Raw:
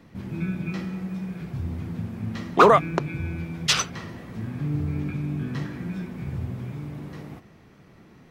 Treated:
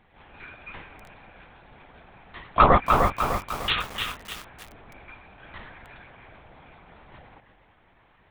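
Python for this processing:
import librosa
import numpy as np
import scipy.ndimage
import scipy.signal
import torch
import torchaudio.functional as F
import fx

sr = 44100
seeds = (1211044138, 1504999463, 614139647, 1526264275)

p1 = scipy.signal.sosfilt(scipy.signal.ellip(4, 1.0, 40, 480.0, 'highpass', fs=sr, output='sos'), x)
p2 = p1 + fx.echo_feedback(p1, sr, ms=331, feedback_pct=16, wet_db=-13, dry=0)
p3 = fx.lpc_vocoder(p2, sr, seeds[0], excitation='whisper', order=8)
y = fx.echo_crushed(p3, sr, ms=301, feedback_pct=55, bits=6, wet_db=-4.0)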